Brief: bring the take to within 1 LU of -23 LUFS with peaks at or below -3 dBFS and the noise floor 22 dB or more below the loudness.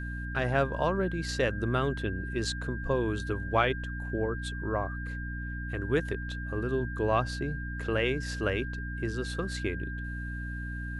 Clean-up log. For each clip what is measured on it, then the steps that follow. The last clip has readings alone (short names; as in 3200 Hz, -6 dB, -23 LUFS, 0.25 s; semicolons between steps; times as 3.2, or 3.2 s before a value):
hum 60 Hz; harmonics up to 300 Hz; hum level -34 dBFS; steady tone 1600 Hz; tone level -40 dBFS; loudness -31.5 LUFS; peak -12.5 dBFS; loudness target -23.0 LUFS
-> de-hum 60 Hz, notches 5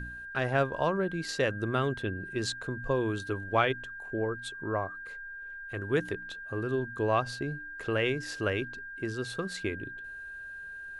hum none; steady tone 1600 Hz; tone level -40 dBFS
-> notch 1600 Hz, Q 30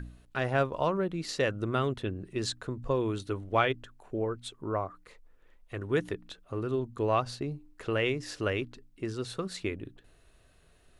steady tone none; loudness -32.5 LUFS; peak -13.0 dBFS; loudness target -23.0 LUFS
-> gain +9.5 dB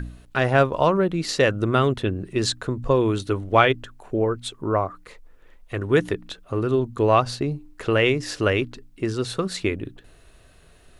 loudness -23.0 LUFS; peak -3.5 dBFS; noise floor -52 dBFS